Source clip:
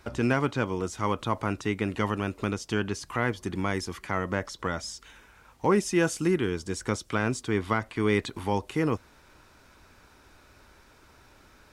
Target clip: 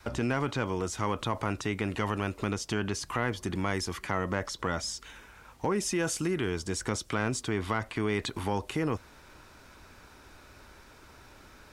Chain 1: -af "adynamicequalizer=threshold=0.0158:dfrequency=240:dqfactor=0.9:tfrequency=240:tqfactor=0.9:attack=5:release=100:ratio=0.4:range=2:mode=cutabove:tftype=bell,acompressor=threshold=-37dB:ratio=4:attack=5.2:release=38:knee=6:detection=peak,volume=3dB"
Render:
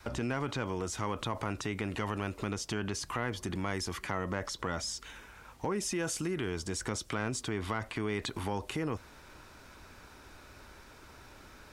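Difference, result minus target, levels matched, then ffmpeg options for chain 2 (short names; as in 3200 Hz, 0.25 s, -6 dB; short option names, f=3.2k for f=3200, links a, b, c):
compressor: peak gain reduction +4.5 dB
-af "adynamicequalizer=threshold=0.0158:dfrequency=240:dqfactor=0.9:tfrequency=240:tqfactor=0.9:attack=5:release=100:ratio=0.4:range=2:mode=cutabove:tftype=bell,acompressor=threshold=-31dB:ratio=4:attack=5.2:release=38:knee=6:detection=peak,volume=3dB"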